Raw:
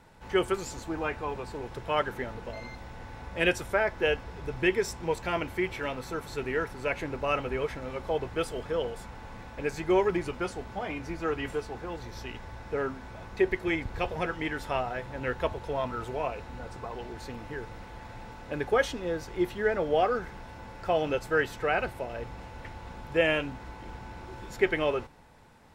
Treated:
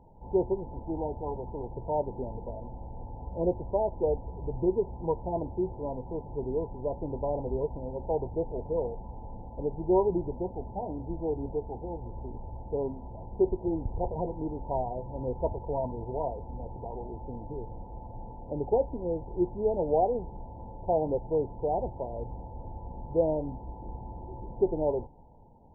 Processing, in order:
linear-phase brick-wall low-pass 1,000 Hz
low-shelf EQ 74 Hz +6.5 dB

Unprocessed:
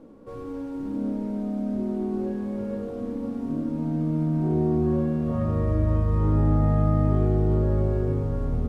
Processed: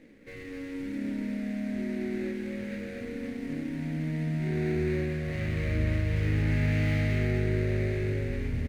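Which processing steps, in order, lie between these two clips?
running median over 41 samples
high shelf with overshoot 1,500 Hz +10 dB, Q 3
single-tap delay 243 ms −5 dB
level −5.5 dB

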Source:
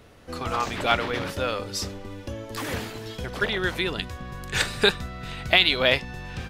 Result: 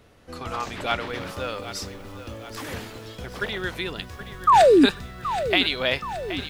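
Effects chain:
sound drawn into the spectrogram fall, 0:04.47–0:04.86, 240–1,300 Hz −10 dBFS
feedback echo at a low word length 774 ms, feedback 55%, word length 7 bits, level −12 dB
level −3.5 dB

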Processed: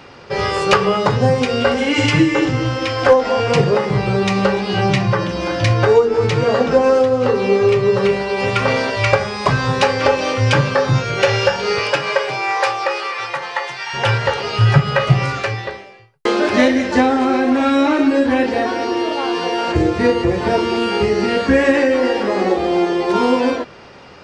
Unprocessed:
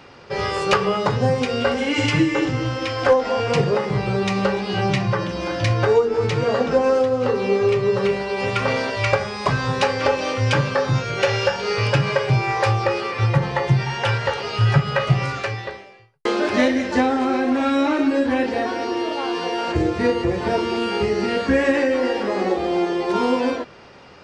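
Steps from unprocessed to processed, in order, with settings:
0:11.78–0:13.93: high-pass filter 370 Hz → 1,100 Hz 12 dB per octave
level +4.5 dB

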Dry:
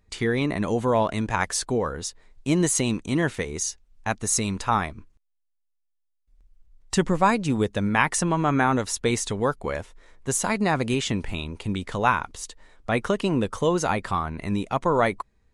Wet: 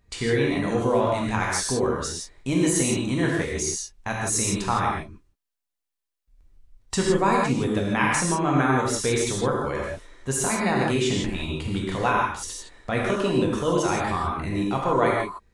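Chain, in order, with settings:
in parallel at 0 dB: downward compressor, threshold −32 dBFS, peak gain reduction 17.5 dB
on the sum: reverb whose tail is shaped and stops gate 190 ms flat, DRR −3 dB
level −6 dB

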